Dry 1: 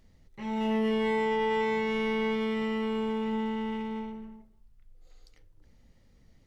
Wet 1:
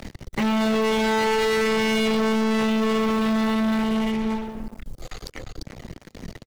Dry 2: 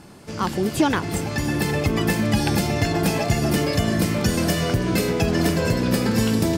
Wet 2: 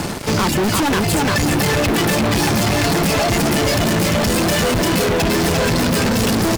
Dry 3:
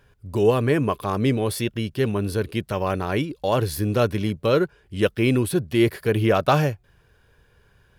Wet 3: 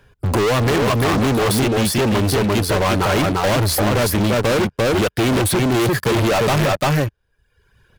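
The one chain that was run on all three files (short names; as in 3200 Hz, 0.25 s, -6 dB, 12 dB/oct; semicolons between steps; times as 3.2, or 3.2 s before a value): reverb removal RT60 1.3 s; high shelf 10000 Hz -3.5 dB; in parallel at 0 dB: limiter -17 dBFS; on the sum: echo 0.345 s -5 dB; sample leveller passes 5; soft clip -13 dBFS; three-band squash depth 40%; gain -2.5 dB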